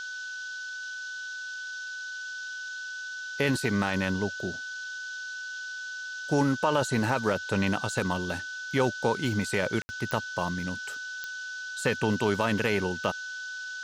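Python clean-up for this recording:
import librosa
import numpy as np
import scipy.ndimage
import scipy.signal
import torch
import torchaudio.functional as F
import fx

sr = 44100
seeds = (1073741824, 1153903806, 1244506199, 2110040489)

y = fx.fix_declick_ar(x, sr, threshold=10.0)
y = fx.notch(y, sr, hz=1500.0, q=30.0)
y = fx.fix_ambience(y, sr, seeds[0], print_start_s=2.87, print_end_s=3.37, start_s=9.82, end_s=9.89)
y = fx.noise_reduce(y, sr, print_start_s=2.87, print_end_s=3.37, reduce_db=30.0)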